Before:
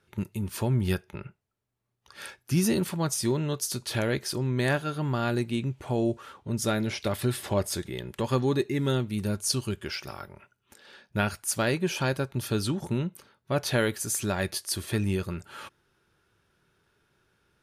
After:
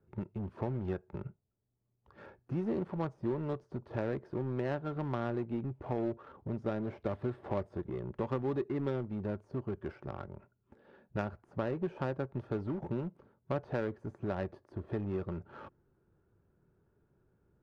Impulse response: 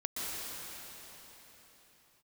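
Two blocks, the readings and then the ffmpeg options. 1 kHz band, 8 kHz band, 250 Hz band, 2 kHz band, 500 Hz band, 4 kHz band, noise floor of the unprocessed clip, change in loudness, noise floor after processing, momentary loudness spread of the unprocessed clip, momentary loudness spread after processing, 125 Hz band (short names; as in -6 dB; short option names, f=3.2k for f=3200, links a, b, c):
-7.5 dB, under -40 dB, -7.5 dB, -14.5 dB, -6.0 dB, -25.0 dB, -77 dBFS, -9.0 dB, -78 dBFS, 11 LU, 10 LU, -9.0 dB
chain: -filter_complex "[0:a]acrossover=split=360|1400[a][b][c];[a]acompressor=threshold=-38dB:ratio=4[d];[b]acompressor=threshold=-33dB:ratio=4[e];[c]acompressor=threshold=-45dB:ratio=4[f];[d][e][f]amix=inputs=3:normalize=0,asplit=2[g][h];[h]aeval=exprs='(mod(50.1*val(0)+1,2)-1)/50.1':c=same,volume=-11dB[i];[g][i]amix=inputs=2:normalize=0,adynamicsmooth=sensitivity=1.5:basefreq=650"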